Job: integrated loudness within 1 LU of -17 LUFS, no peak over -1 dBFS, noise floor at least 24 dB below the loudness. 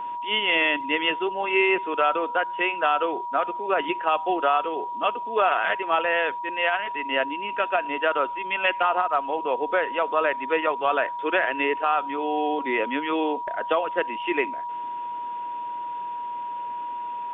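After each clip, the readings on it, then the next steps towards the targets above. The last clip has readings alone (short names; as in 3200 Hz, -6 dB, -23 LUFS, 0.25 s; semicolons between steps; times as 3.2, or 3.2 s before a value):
steady tone 960 Hz; tone level -29 dBFS; loudness -24.5 LUFS; peak -8.5 dBFS; loudness target -17.0 LUFS
-> notch 960 Hz, Q 30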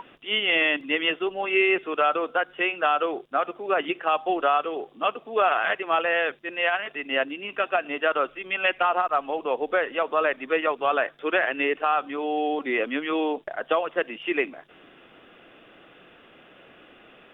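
steady tone none; loudness -25.0 LUFS; peak -9.5 dBFS; loudness target -17.0 LUFS
-> gain +8 dB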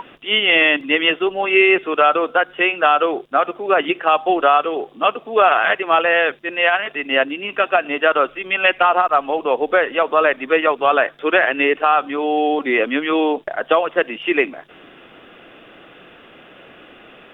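loudness -17.0 LUFS; peak -1.5 dBFS; noise floor -45 dBFS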